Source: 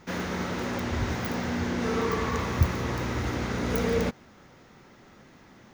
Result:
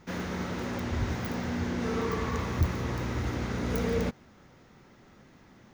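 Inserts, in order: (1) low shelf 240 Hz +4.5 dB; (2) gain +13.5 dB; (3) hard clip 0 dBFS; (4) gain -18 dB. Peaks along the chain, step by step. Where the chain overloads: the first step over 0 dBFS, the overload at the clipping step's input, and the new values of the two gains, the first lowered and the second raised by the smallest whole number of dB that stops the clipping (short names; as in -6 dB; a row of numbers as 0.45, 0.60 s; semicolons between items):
-5.5, +8.0, 0.0, -18.0 dBFS; step 2, 8.0 dB; step 2 +5.5 dB, step 4 -10 dB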